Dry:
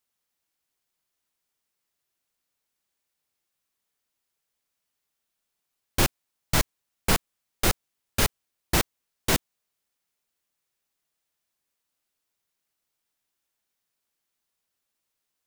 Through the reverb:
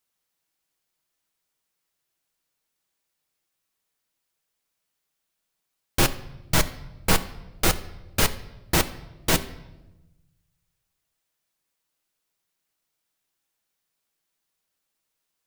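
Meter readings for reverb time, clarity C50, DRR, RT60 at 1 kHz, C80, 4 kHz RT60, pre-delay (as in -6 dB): 1.1 s, 15.5 dB, 9.0 dB, 0.95 s, 18.0 dB, 0.80 s, 6 ms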